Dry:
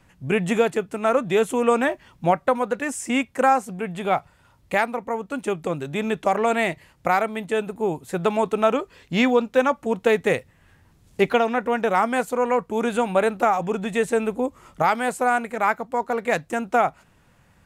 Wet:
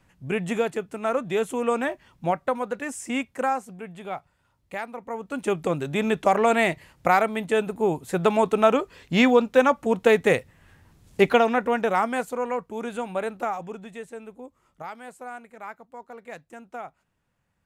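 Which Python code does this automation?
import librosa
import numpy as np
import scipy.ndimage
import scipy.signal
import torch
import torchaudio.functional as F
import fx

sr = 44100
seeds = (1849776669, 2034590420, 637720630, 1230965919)

y = fx.gain(x, sr, db=fx.line((3.21, -5.0), (4.13, -11.5), (4.8, -11.5), (5.53, 1.0), (11.49, 1.0), (12.77, -8.5), (13.52, -8.5), (14.1, -17.5)))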